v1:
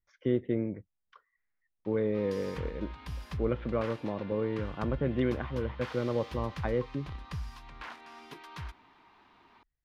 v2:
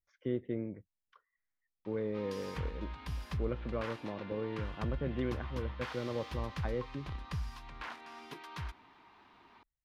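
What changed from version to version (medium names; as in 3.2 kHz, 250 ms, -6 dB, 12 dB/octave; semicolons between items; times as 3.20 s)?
speech -6.5 dB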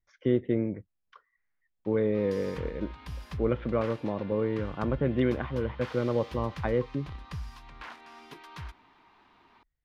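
speech +9.5 dB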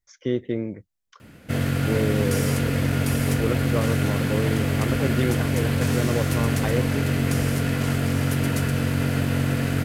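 first sound: unmuted; master: remove distance through air 330 m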